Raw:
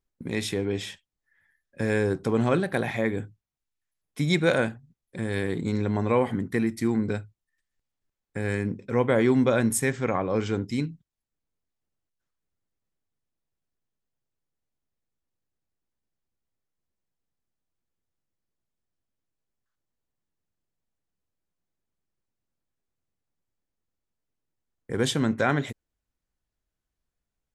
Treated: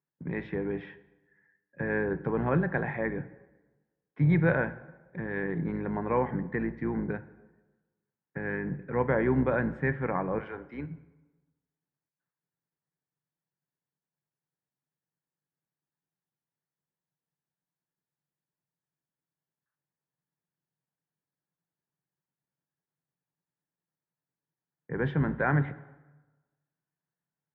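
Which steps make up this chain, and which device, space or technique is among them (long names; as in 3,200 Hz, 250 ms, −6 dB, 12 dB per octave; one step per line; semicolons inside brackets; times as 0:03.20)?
0:10.38–0:10.89: high-pass filter 810 Hz → 290 Hz 12 dB per octave
low shelf with overshoot 110 Hz −13 dB, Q 3
sub-octave bass pedal (sub-octave generator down 2 octaves, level −5 dB; loudspeaker in its box 79–2,100 Hz, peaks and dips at 140 Hz +6 dB, 220 Hz −7 dB, 910 Hz +6 dB, 1,700 Hz +7 dB)
dense smooth reverb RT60 1.2 s, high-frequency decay 0.7×, DRR 14 dB
level −6 dB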